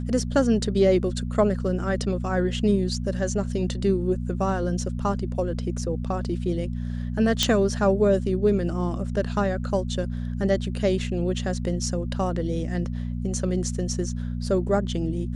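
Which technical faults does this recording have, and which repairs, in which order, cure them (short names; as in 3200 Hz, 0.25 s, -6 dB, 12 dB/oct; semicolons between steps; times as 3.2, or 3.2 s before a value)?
hum 60 Hz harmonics 4 -29 dBFS
7.43 pop -5 dBFS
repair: de-click; de-hum 60 Hz, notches 4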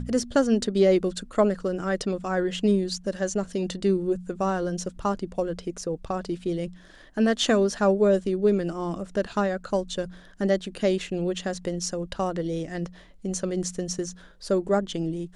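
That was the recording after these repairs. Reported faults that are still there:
none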